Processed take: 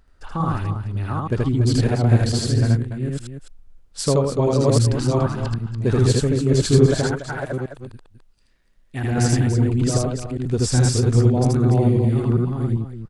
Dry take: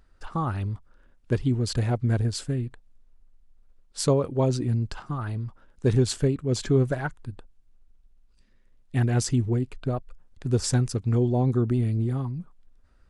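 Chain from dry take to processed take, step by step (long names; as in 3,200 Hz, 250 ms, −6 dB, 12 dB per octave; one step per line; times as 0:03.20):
delay that plays each chunk backwards 399 ms, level −0.5 dB
0:07.03–0:09.04: low-shelf EQ 310 Hz −8 dB
loudspeakers that aren't time-aligned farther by 27 metres −1 dB, 99 metres −9 dB
level +1.5 dB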